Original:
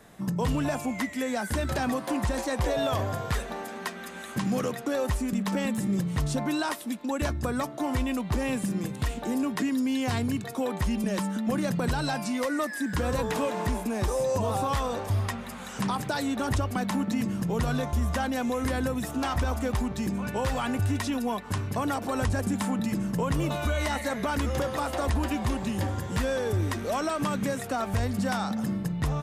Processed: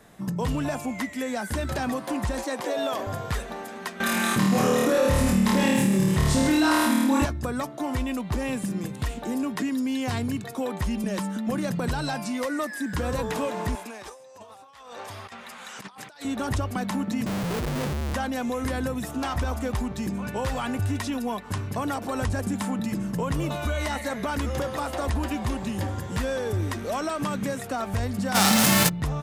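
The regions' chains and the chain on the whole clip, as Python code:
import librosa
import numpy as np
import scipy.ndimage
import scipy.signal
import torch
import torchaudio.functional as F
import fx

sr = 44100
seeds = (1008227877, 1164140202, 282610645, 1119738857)

y = fx.chain(x, sr, fx.highpass(hz=220.0, slope=24),
    fx.quant_float(bits=6), at=(2.44, 3.07))
y = fx.chain(y, sr, fx.room_flutter(wall_m=4.5, rt60_s=1.1),
    fx.env_flatten(amount_pct=70), at=(4.0, 7.25))
y = fx.chain(y, sr, fx.highpass(hz=1400.0, slope=6),
    fx.high_shelf(hz=7900.0, db=-11.0),
    fx.over_compress(threshold_db=-41.0, ratio=-0.5), at=(13.75, 16.25))
y = fx.chain(y, sr, fx.steep_lowpass(hz=520.0, slope=72),
    fx.schmitt(flips_db=-46.5), at=(17.26, 18.14))
y = fx.envelope_flatten(y, sr, power=0.3, at=(28.34, 28.88), fade=0.02)
y = fx.room_flutter(y, sr, wall_m=9.0, rt60_s=0.39, at=(28.34, 28.88), fade=0.02)
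y = fx.env_flatten(y, sr, amount_pct=100, at=(28.34, 28.88), fade=0.02)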